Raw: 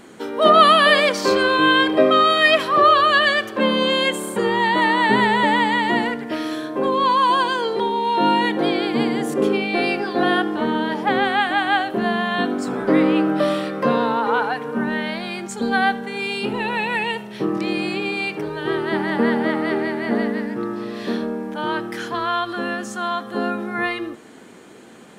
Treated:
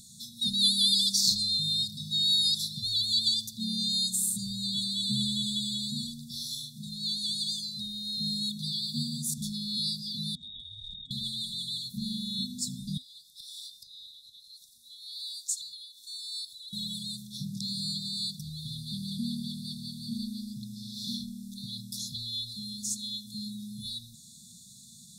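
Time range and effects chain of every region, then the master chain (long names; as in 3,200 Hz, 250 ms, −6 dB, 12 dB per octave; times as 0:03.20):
0:10.35–0:11.11: voice inversion scrambler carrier 3,500 Hz + compressor whose output falls as the input rises −23 dBFS, ratio −0.5
0:12.97–0:16.73: Butterworth high-pass 430 Hz 48 dB per octave + downward compressor, threshold −29 dBFS
whole clip: flat-topped bell 580 Hz −16 dB 3 octaves; brick-wall band-stop 250–3,400 Hz; high-shelf EQ 2,600 Hz +8 dB; level −1.5 dB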